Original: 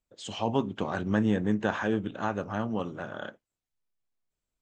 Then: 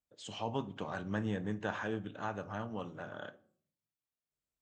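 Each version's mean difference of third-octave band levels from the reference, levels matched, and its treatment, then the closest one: 2.0 dB: high-pass 51 Hz; de-hum 373.9 Hz, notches 3; dynamic bell 280 Hz, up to -4 dB, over -38 dBFS, Q 0.82; simulated room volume 610 m³, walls furnished, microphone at 0.44 m; trim -7 dB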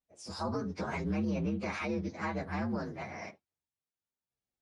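5.5 dB: frequency axis rescaled in octaves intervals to 120%; high-pass 59 Hz; peak limiter -25.5 dBFS, peak gain reduction 11 dB; resampled via 22.05 kHz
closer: first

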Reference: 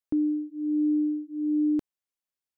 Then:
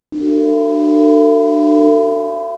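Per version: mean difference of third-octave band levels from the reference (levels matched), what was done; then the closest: 10.0 dB: CVSD coder 32 kbps; frequency-shifting echo 89 ms, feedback 36%, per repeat +75 Hz, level -7 dB; pitch-shifted reverb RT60 2.3 s, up +7 st, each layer -8 dB, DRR -9 dB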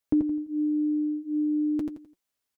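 1.0 dB: compression 3:1, threshold -29 dBFS, peak gain reduction 5.5 dB; comb of notches 180 Hz; on a send: feedback delay 85 ms, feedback 32%, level -5 dB; on the sum: trim +8 dB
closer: second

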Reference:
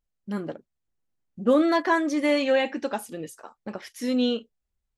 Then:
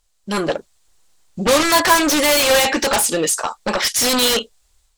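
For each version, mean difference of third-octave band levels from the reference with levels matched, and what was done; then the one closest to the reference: 12.5 dB: ten-band graphic EQ 125 Hz -9 dB, 250 Hz -8 dB, 1 kHz +4 dB, 4 kHz +7 dB, 8 kHz +11 dB; level rider gain up to 7 dB; in parallel at -11 dB: sine folder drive 20 dB, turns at -5 dBFS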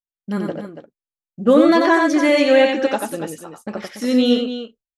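4.5 dB: expander -39 dBFS; band-stop 950 Hz, Q 14; on a send: loudspeakers at several distances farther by 31 m -4 dB, 98 m -10 dB; on the sum: trim +6.5 dB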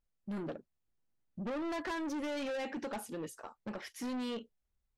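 6.5 dB: treble shelf 3.5 kHz -5 dB; compression 10:1, threshold -24 dBFS, peak gain reduction 9.5 dB; saturation -33.5 dBFS, distortion -8 dB; trim -1.5 dB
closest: second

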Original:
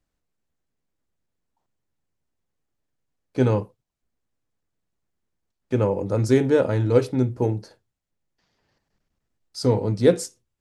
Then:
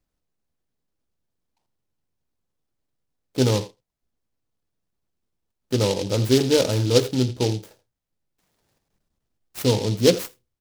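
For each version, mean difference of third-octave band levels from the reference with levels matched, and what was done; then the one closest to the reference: 8.0 dB: speakerphone echo 80 ms, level -14 dB; delay time shaken by noise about 4 kHz, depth 0.11 ms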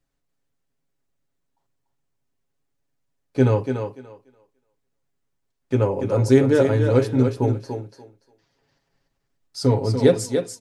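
3.5 dB: comb 7.3 ms, depth 55%; on a send: thinning echo 290 ms, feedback 19%, high-pass 180 Hz, level -6 dB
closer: second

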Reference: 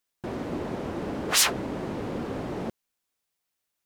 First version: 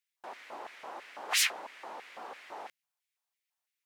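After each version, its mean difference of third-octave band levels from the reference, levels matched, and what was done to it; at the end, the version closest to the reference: 11.0 dB: hum notches 60/120/180 Hz; LFO high-pass square 3 Hz 830–2100 Hz; trim -8 dB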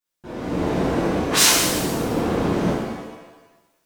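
5.5 dB: level rider gain up to 10.5 dB; pitch-shifted reverb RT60 1.1 s, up +7 st, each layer -8 dB, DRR -10 dB; trim -10.5 dB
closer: second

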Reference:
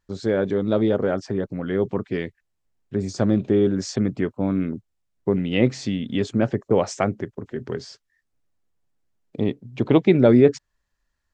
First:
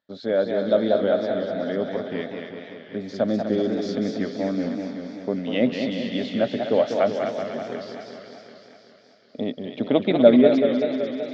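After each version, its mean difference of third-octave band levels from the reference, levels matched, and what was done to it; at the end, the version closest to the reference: 7.5 dB: cabinet simulation 250–4500 Hz, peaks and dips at 250 Hz +7 dB, 360 Hz -8 dB, 610 Hz +10 dB, 1 kHz -7 dB, 2.6 kHz -4 dB, 3.6 kHz +7 dB; on a send: thinning echo 246 ms, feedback 71%, high-pass 870 Hz, level -6 dB; on the sum: modulated delay 191 ms, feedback 68%, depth 146 cents, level -6.5 dB; trim -2.5 dB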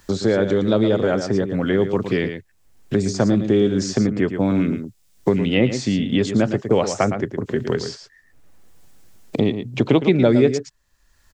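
5.5 dB: treble shelf 4.1 kHz +8 dB; on a send: delay 112 ms -10 dB; on the sum: three bands compressed up and down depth 70%; trim +2.5 dB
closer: second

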